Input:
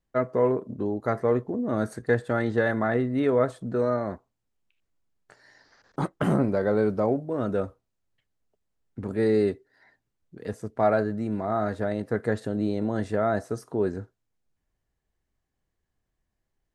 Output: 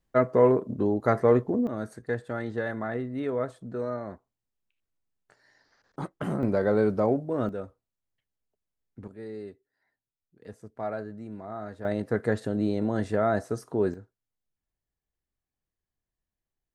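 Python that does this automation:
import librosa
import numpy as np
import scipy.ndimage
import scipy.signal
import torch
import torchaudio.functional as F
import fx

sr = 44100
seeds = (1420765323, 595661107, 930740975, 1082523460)

y = fx.gain(x, sr, db=fx.steps((0.0, 3.0), (1.67, -7.0), (6.43, 0.0), (7.49, -8.5), (9.08, -17.0), (10.42, -11.0), (11.85, 0.0), (13.94, -10.0)))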